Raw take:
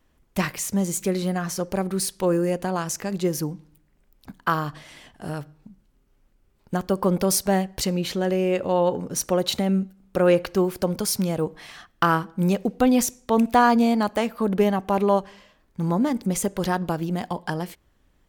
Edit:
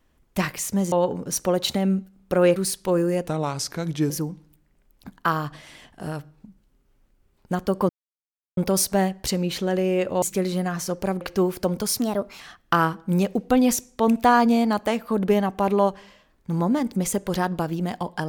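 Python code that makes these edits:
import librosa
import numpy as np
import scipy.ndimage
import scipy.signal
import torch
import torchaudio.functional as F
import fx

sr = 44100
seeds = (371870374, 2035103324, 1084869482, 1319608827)

y = fx.edit(x, sr, fx.swap(start_s=0.92, length_s=0.99, other_s=8.76, other_length_s=1.64),
    fx.speed_span(start_s=2.63, length_s=0.69, speed=0.84),
    fx.insert_silence(at_s=7.11, length_s=0.68),
    fx.speed_span(start_s=11.18, length_s=0.52, speed=1.27), tone=tone)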